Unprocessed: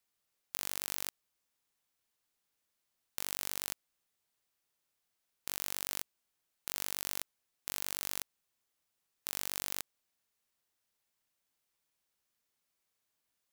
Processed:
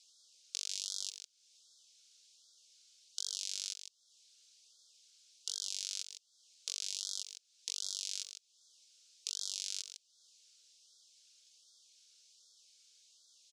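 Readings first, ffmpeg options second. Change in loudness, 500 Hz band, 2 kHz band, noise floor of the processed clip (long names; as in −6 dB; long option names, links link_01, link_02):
−1.5 dB, below −15 dB, −11.0 dB, −73 dBFS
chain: -af "aecho=1:1:3.6:0.38,acompressor=threshold=-56dB:ratio=3,aexciter=amount=11.2:drive=8.6:freq=3000,highpass=frequency=340:width=0.5412,highpass=frequency=340:width=1.3066,equalizer=frequency=460:width_type=q:width=4:gain=9,equalizer=frequency=910:width_type=q:width=4:gain=-9,equalizer=frequency=1500:width_type=q:width=4:gain=6,equalizer=frequency=2200:width_type=q:width=4:gain=5,lowpass=frequency=6400:width=0.5412,lowpass=frequency=6400:width=1.3066,aecho=1:1:154:0.355,afftfilt=real='re*(1-between(b*sr/1024,800*pow(2300/800,0.5+0.5*sin(2*PI*1.3*pts/sr))/1.41,800*pow(2300/800,0.5+0.5*sin(2*PI*1.3*pts/sr))*1.41))':imag='im*(1-between(b*sr/1024,800*pow(2300/800,0.5+0.5*sin(2*PI*1.3*pts/sr))/1.41,800*pow(2300/800,0.5+0.5*sin(2*PI*1.3*pts/sr))*1.41))':win_size=1024:overlap=0.75,volume=-1.5dB"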